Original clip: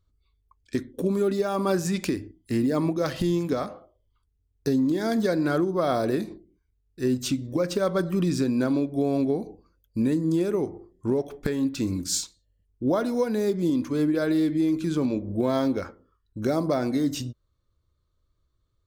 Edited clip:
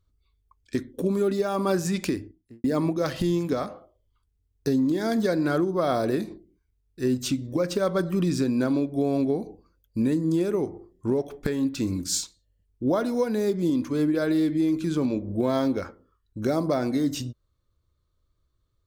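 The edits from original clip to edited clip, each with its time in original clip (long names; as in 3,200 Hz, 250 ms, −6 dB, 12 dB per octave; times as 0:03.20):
0:02.12–0:02.64: fade out and dull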